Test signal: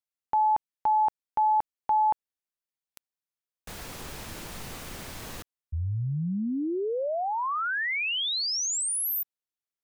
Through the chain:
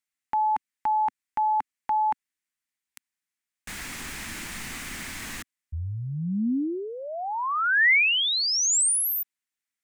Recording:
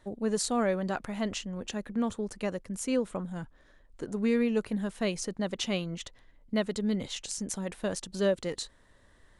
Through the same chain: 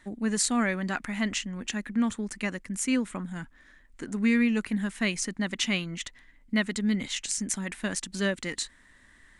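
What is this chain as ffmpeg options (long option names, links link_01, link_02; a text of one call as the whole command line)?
ffmpeg -i in.wav -af "equalizer=frequency=125:width_type=o:width=1:gain=-4,equalizer=frequency=250:width_type=o:width=1:gain=7,equalizer=frequency=500:width_type=o:width=1:gain=-9,equalizer=frequency=2000:width_type=o:width=1:gain=11,equalizer=frequency=8000:width_type=o:width=1:gain=7" out.wav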